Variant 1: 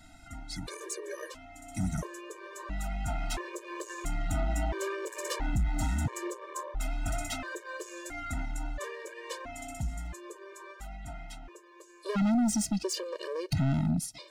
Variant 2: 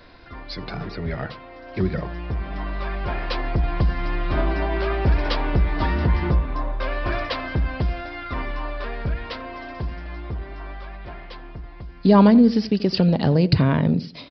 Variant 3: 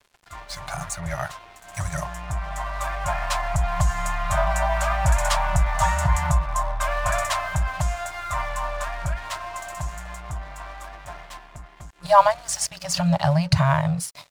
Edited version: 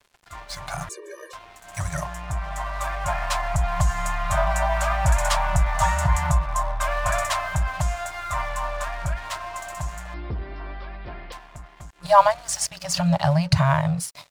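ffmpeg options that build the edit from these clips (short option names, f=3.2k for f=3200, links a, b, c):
-filter_complex "[2:a]asplit=3[a][b][c];[a]atrim=end=0.892[d];[0:a]atrim=start=0.888:end=1.332[e];[b]atrim=start=1.328:end=10.142[f];[1:a]atrim=start=10.138:end=11.322[g];[c]atrim=start=11.318[h];[d][e]acrossfade=d=0.004:c1=hsin:c2=hsin[i];[i][f]acrossfade=d=0.004:c1=hsin:c2=hsin[j];[j][g]acrossfade=d=0.004:c1=hsin:c2=hsin[k];[k][h]acrossfade=d=0.004:c1=hsin:c2=hsin"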